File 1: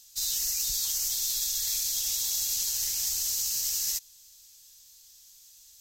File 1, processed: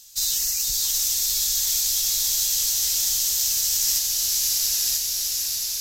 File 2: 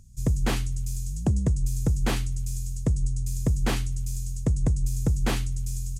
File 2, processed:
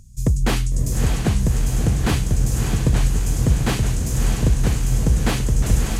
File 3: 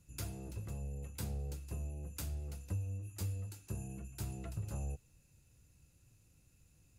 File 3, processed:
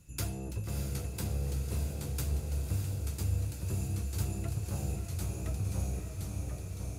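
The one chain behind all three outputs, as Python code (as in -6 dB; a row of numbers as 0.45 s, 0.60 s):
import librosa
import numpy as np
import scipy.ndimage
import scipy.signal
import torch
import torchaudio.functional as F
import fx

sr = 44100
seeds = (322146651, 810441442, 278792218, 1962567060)

y = fx.echo_pitch(x, sr, ms=755, semitones=-1, count=2, db_per_echo=-6.0)
y = fx.rider(y, sr, range_db=5, speed_s=0.5)
y = fx.echo_diffused(y, sr, ms=615, feedback_pct=61, wet_db=-4.5)
y = y * librosa.db_to_amplitude(5.0)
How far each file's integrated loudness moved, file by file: +6.5 LU, +7.0 LU, +7.5 LU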